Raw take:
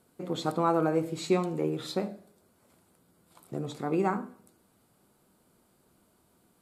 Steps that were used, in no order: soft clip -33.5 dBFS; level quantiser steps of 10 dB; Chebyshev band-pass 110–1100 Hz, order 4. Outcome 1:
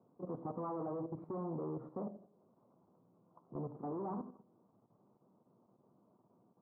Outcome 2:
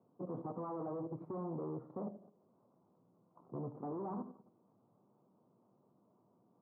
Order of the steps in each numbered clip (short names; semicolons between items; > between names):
soft clip > Chebyshev band-pass > level quantiser; soft clip > level quantiser > Chebyshev band-pass